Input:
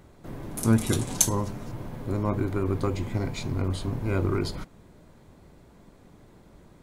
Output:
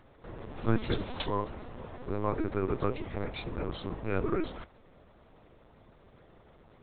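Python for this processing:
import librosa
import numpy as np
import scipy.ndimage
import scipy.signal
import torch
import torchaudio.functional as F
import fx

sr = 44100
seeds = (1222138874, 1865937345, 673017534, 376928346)

y = scipy.signal.sosfilt(scipy.signal.butter(2, 270.0, 'highpass', fs=sr, output='sos'), x)
y = fx.notch(y, sr, hz=2200.0, q=25.0)
y = fx.lpc_vocoder(y, sr, seeds[0], excitation='pitch_kept', order=10)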